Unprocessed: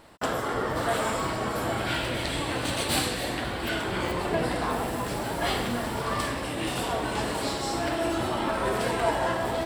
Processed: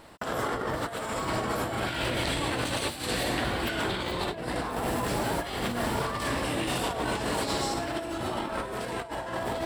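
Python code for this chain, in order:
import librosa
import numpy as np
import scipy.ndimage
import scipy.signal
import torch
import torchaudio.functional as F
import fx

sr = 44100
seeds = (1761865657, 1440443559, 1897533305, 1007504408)

y = fx.peak_eq(x, sr, hz=3800.0, db=10.5, octaves=0.41, at=(3.89, 4.36))
y = fx.over_compress(y, sr, threshold_db=-30.0, ratio=-0.5)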